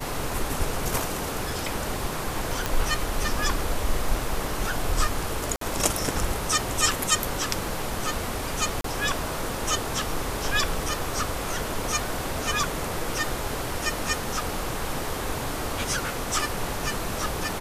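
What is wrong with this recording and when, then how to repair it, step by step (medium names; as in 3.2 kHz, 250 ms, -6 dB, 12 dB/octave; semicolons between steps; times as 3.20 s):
2.66 s: pop
5.56–5.61 s: dropout 53 ms
8.81–8.84 s: dropout 33 ms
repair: de-click; interpolate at 5.56 s, 53 ms; interpolate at 8.81 s, 33 ms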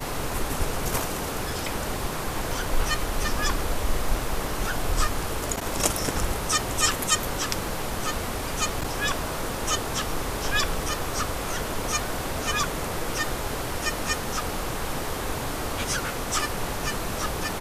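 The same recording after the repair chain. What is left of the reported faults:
nothing left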